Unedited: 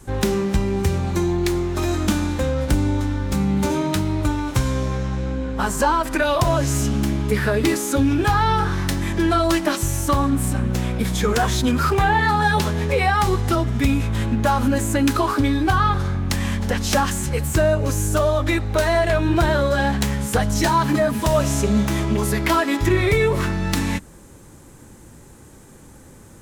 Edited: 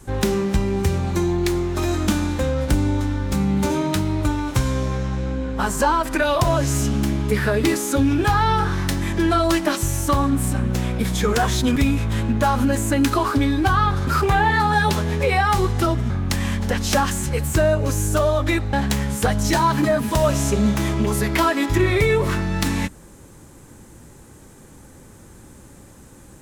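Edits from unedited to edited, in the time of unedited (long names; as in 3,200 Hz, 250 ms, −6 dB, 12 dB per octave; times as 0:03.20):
0:11.76–0:13.79: move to 0:16.10
0:18.73–0:19.84: remove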